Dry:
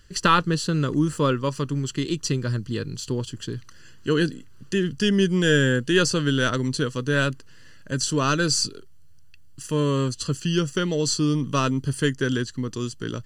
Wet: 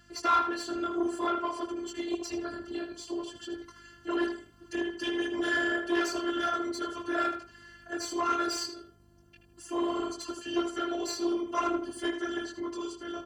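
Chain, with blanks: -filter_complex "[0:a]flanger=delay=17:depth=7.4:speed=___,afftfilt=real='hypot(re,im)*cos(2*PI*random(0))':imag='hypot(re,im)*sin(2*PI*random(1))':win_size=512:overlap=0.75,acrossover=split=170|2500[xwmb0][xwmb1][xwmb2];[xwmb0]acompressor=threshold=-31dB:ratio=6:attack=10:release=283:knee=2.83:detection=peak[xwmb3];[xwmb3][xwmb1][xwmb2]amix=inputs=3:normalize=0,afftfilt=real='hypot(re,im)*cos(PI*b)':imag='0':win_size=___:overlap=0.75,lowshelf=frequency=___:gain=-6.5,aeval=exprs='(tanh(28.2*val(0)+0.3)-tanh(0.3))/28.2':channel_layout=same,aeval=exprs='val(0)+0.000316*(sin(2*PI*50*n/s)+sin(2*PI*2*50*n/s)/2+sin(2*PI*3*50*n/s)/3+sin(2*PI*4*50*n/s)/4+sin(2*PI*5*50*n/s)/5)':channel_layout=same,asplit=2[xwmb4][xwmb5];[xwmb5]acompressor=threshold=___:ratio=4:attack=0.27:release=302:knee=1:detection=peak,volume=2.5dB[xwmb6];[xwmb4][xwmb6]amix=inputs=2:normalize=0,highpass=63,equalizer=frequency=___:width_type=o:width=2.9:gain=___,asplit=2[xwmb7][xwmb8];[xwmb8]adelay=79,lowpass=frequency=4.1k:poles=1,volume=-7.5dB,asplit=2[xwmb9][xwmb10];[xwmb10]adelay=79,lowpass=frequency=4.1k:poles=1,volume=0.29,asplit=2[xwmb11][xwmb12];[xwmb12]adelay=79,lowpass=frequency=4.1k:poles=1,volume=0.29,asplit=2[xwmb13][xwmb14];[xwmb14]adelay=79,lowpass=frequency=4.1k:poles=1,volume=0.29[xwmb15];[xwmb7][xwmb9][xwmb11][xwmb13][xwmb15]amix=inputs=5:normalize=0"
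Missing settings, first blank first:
0.57, 512, 270, -52dB, 830, 11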